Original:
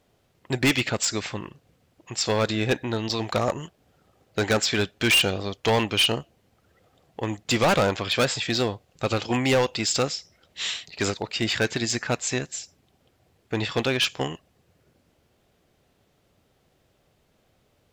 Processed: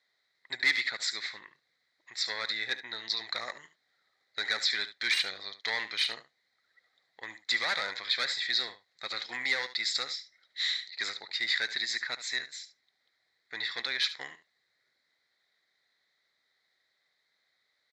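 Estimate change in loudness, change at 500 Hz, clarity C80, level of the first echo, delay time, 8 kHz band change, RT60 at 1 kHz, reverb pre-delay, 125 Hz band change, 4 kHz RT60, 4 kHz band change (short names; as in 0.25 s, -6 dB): -6.5 dB, -21.5 dB, none, -13.5 dB, 72 ms, -13.0 dB, none, none, under -30 dB, none, -4.0 dB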